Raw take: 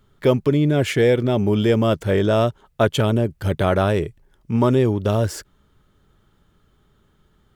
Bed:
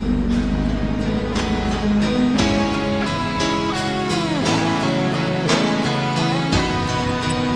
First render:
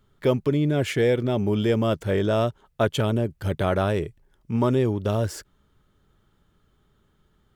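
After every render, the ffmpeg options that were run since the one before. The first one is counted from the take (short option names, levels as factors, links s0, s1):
-af "volume=0.596"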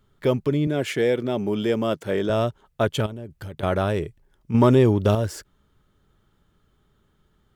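-filter_complex "[0:a]asettb=1/sr,asplit=3[s0][s1][s2];[s0]atrim=end=0.674[s3];[s1]atrim=start=0.67:end=2.3,asetpts=PTS-STARTPTS,afade=t=in:d=0.004:c=qsin,afade=t=out:st=1.626:d=0.004:c=qsin,highpass=170[s4];[s2]atrim=start=2.296[s5];[s3][s4]acrossfade=d=0.004:c1=hsin:c2=qsin[s6];[s6][s5]acrossfade=d=0.004:c1=qsin:c2=hsin,asettb=1/sr,asplit=3[s7][s8][s9];[s7]atrim=end=3.064[s10];[s8]atrim=start=3.06:end=3.63,asetpts=PTS-STARTPTS,afade=t=in:d=0.004:c=qsin,afade=t=out:st=0.566:d=0.004:c=qsin,acompressor=threshold=0.0282:ratio=16:attack=3.2:release=140:knee=1:detection=peak[s11];[s9]atrim=start=3.626[s12];[s10][s11]acrossfade=d=0.004:c1=hsin:c2=qsin[s13];[s13][s12]acrossfade=d=0.004:c1=qsin:c2=hsin,asettb=1/sr,asplit=3[s14][s15][s16];[s14]atrim=end=4.544[s17];[s15]atrim=start=4.54:end=5.15,asetpts=PTS-STARTPTS,afade=t=in:d=0.004:c=qsin,afade=t=out:st=0.606:d=0.004:c=qsin,acontrast=50[s18];[s16]atrim=start=5.146[s19];[s17][s18]acrossfade=d=0.004:c1=hsin:c2=qsin[s20];[s20][s19]acrossfade=d=0.004:c1=qsin:c2=hsin"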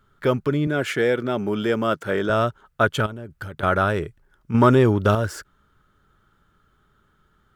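-af "equalizer=f=1400:w=2.3:g=11.5"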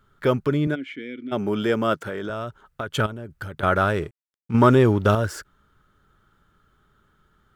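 -filter_complex "[0:a]asplit=3[s0][s1][s2];[s0]afade=t=out:st=0.74:d=0.02[s3];[s1]asplit=3[s4][s5][s6];[s4]bandpass=f=270:t=q:w=8,volume=1[s7];[s5]bandpass=f=2290:t=q:w=8,volume=0.501[s8];[s6]bandpass=f=3010:t=q:w=8,volume=0.355[s9];[s7][s8][s9]amix=inputs=3:normalize=0,afade=t=in:st=0.74:d=0.02,afade=t=out:st=1.31:d=0.02[s10];[s2]afade=t=in:st=1.31:d=0.02[s11];[s3][s10][s11]amix=inputs=3:normalize=0,asettb=1/sr,asplit=3[s12][s13][s14];[s12]atrim=end=2.034[s15];[s13]atrim=start=2.03:end=2.95,asetpts=PTS-STARTPTS,afade=t=in:d=0.004:c=qsin,afade=t=out:st=0.916:d=0.004:c=qsin,acompressor=threshold=0.0501:ratio=6:attack=3.2:release=140:knee=1:detection=peak[s16];[s14]atrim=start=2.946[s17];[s15][s16]acrossfade=d=0.004:c1=hsin:c2=qsin[s18];[s18][s17]acrossfade=d=0.004:c1=qsin:c2=hsin,asettb=1/sr,asplit=3[s19][s20][s21];[s19]atrim=end=3.754[s22];[s20]atrim=start=3.75:end=5.15,asetpts=PTS-STARTPTS,afade=t=in:d=0.004:c=qsin,afade=t=out:st=1.396:d=0.004:c=qsin,aeval=exprs='sgn(val(0))*max(abs(val(0))-0.00398,0)':c=same[s23];[s21]atrim=start=5.146[s24];[s22][s23]acrossfade=d=0.004:c1=hsin:c2=qsin[s25];[s25][s24]acrossfade=d=0.004:c1=qsin:c2=hsin"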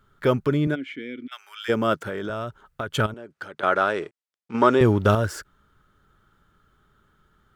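-filter_complex "[0:a]asplit=3[s0][s1][s2];[s0]afade=t=out:st=1.26:d=0.02[s3];[s1]highpass=f=1400:w=0.5412,highpass=f=1400:w=1.3066,afade=t=in:st=1.26:d=0.02,afade=t=out:st=1.68:d=0.02[s4];[s2]afade=t=in:st=1.68:d=0.02[s5];[s3][s4][s5]amix=inputs=3:normalize=0,asettb=1/sr,asplit=3[s6][s7][s8];[s6]atrim=end=3.144[s9];[s7]atrim=start=3.14:end=4.81,asetpts=PTS-STARTPTS,afade=t=in:d=0.004:c=qsin,afade=t=out:st=1.666:d=0.004:c=qsin,highpass=320,lowpass=7200[s10];[s8]atrim=start=4.806[s11];[s9][s10]acrossfade=d=0.004:c1=hsin:c2=qsin[s12];[s12][s11]acrossfade=d=0.004:c1=qsin:c2=hsin"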